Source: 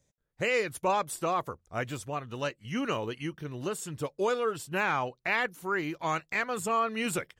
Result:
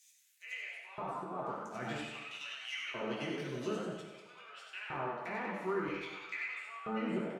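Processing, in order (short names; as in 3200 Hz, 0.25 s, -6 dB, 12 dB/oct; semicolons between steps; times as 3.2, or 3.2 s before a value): G.711 law mismatch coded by mu; HPF 110 Hz 12 dB/oct; pre-emphasis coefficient 0.8; treble ducked by the level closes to 910 Hz, closed at -36.5 dBFS; frequency-shifting echo 94 ms, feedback 44%, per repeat +100 Hz, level -6 dB; limiter -36 dBFS, peak gain reduction 8 dB; auto swell 0.14 s; LFO high-pass square 0.51 Hz 200–2400 Hz; reverb RT60 1.3 s, pre-delay 4 ms, DRR -3.5 dB; gain +2 dB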